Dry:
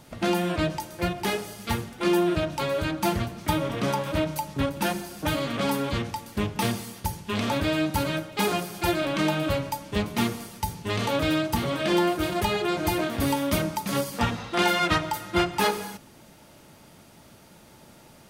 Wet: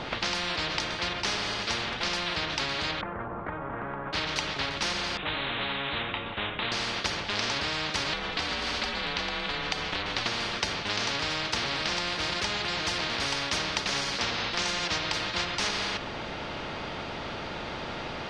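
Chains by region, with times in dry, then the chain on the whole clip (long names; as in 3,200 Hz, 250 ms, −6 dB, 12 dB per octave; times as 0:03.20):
0:03.01–0:04.13: low-pass filter 1,100 Hz 24 dB per octave + downward compressor 2.5 to 1, threshold −33 dBFS
0:05.17–0:06.72: Chebyshev low-pass with heavy ripple 3,800 Hz, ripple 3 dB + micro pitch shift up and down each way 15 cents
0:08.13–0:10.26: frequency shifter −120 Hz + downward compressor, threshold −31 dBFS
whole clip: low-pass filter 4,100 Hz 24 dB per octave; every bin compressed towards the loudest bin 10 to 1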